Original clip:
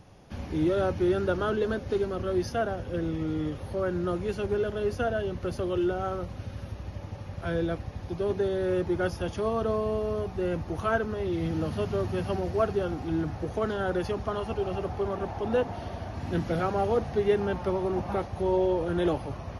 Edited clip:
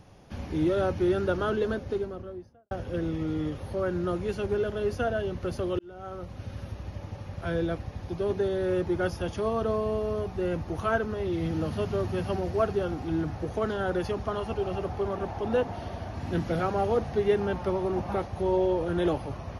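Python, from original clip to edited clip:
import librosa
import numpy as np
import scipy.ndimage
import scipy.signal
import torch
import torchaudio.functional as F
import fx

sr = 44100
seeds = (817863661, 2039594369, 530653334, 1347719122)

y = fx.studio_fade_out(x, sr, start_s=1.59, length_s=1.12)
y = fx.edit(y, sr, fx.fade_in_span(start_s=5.79, length_s=0.73), tone=tone)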